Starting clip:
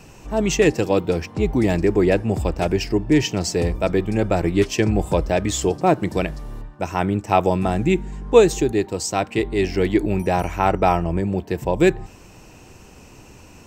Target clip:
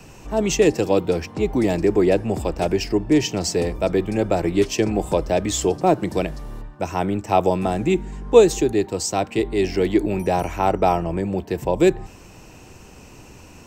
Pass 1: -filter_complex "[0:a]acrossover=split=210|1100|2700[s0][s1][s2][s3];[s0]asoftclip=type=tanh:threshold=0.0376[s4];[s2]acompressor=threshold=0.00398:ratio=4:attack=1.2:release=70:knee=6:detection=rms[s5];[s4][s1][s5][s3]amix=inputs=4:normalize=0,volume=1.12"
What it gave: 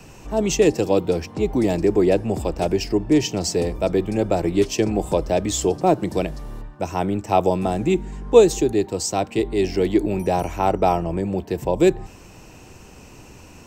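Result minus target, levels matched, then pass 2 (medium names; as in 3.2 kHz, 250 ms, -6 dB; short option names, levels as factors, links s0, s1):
compression: peak gain reduction +8 dB
-filter_complex "[0:a]acrossover=split=210|1100|2700[s0][s1][s2][s3];[s0]asoftclip=type=tanh:threshold=0.0376[s4];[s2]acompressor=threshold=0.0141:ratio=4:attack=1.2:release=70:knee=6:detection=rms[s5];[s4][s1][s5][s3]amix=inputs=4:normalize=0,volume=1.12"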